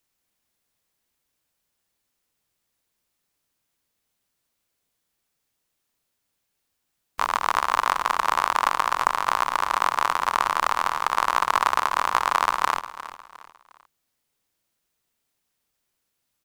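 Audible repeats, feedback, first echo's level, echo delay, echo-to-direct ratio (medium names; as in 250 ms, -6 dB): 3, 36%, -14.5 dB, 356 ms, -14.0 dB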